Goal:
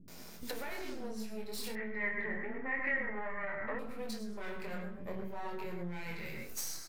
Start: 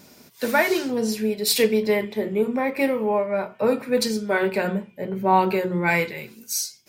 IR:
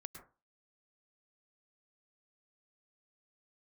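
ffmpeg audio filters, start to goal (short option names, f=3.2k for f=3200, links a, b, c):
-filter_complex "[0:a]aeval=exprs='if(lt(val(0),0),0.251*val(0),val(0))':c=same,alimiter=limit=-17.5dB:level=0:latency=1,flanger=delay=22.5:depth=4.5:speed=0.51[a];[1:a]atrim=start_sample=2205,afade=t=out:st=0.19:d=0.01,atrim=end_sample=8820[b];[a][b]afir=irnorm=-1:irlink=0,acompressor=threshold=-46dB:ratio=16,asettb=1/sr,asplit=3[c][d][e];[c]atrim=end=1.674[f];[d]atrim=start=1.67:end=3.71,asetpts=PTS-STARTPTS,afade=t=in:d=0.004:c=qsin,afade=t=out:st=2.036:d=0.004:c=qsin,lowpass=f=1.9k:t=q:w=14[g];[e]atrim=start=3.706[h];[f][g]acrossfade=d=0.004:c1=hsin:c2=qsin[i];[i][h]acrossfade=d=0.004:c1=qsin:c2=hsin,acrossover=split=290[j][k];[k]adelay=80[l];[j][l]amix=inputs=2:normalize=0,volume=11dB"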